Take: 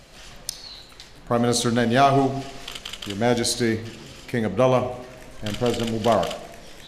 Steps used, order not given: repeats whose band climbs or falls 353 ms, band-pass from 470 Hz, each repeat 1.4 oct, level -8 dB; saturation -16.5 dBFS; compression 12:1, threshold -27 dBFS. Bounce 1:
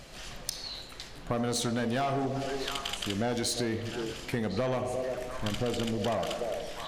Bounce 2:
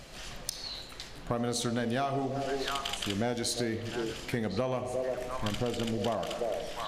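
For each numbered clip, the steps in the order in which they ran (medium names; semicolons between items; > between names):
saturation > repeats whose band climbs or falls > compression; repeats whose band climbs or falls > compression > saturation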